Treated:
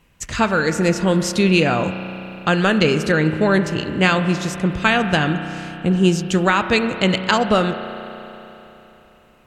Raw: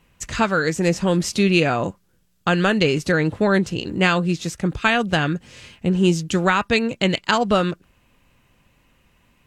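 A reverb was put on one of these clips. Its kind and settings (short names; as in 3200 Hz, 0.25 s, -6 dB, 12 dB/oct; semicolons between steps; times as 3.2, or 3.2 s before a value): spring tank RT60 3.5 s, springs 32 ms, chirp 45 ms, DRR 8.5 dB; gain +1.5 dB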